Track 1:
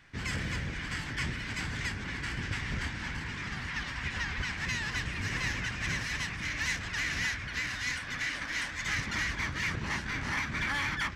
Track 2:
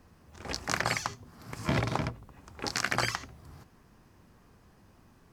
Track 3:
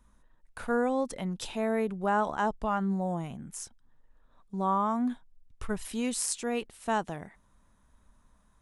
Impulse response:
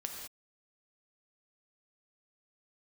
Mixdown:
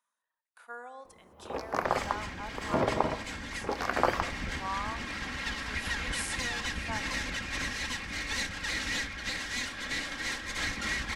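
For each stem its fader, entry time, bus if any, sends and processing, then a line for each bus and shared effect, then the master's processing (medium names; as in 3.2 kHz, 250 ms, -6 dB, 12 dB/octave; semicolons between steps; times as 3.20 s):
-0.5 dB, 1.70 s, no send, comb filter that takes the minimum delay 3.7 ms; low-pass 11 kHz 12 dB/octave
-5.5 dB, 1.05 s, send -7.5 dB, graphic EQ 125/250/500/1000/2000/4000/8000 Hz -5/+4/+11/+9/-3/-5/-12 dB
-8.0 dB, 0.00 s, send -6.5 dB, harmonic-percussive split percussive -7 dB; high-pass 920 Hz 12 dB/octave; reverb removal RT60 0.57 s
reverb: on, pre-delay 3 ms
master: gain riding 2 s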